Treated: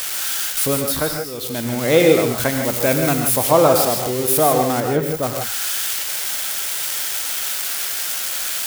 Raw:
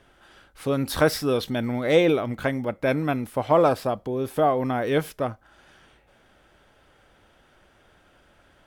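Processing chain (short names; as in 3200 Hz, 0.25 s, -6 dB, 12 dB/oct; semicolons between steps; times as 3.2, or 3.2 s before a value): switching spikes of -17.5 dBFS; 0.7–1.8 dip -15.5 dB, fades 0.50 s; 2.63–3.2 high shelf 8700 Hz +6 dB; 4.8–5.23 de-esser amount 95%; non-linear reverb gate 0.18 s rising, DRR 3.5 dB; gain +4 dB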